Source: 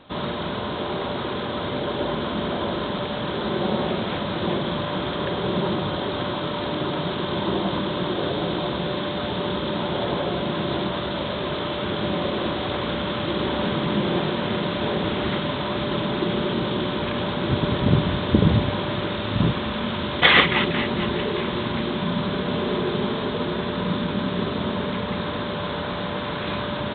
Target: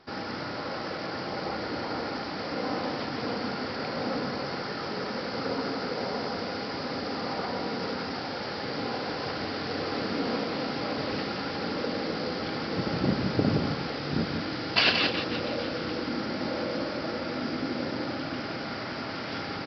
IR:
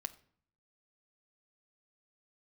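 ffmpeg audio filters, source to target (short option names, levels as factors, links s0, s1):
-filter_complex "[0:a]asetrate=60417,aresample=44100,asplit=2[s0][s1];[s1]aecho=0:1:173:0.501[s2];[s0][s2]amix=inputs=2:normalize=0,volume=0.422"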